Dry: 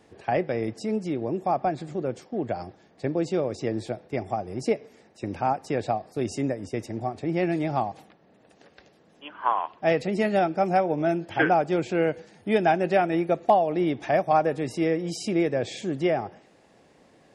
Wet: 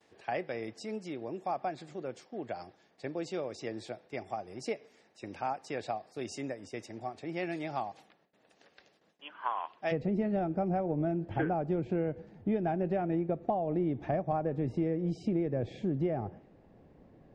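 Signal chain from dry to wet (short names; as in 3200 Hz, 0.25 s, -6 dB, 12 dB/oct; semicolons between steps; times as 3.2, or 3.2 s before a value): gate with hold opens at -49 dBFS; tilt +2.5 dB/oct, from 9.91 s -4 dB/oct; compressor 6:1, threshold -20 dBFS, peak gain reduction 9.5 dB; air absorption 74 m; gain -7 dB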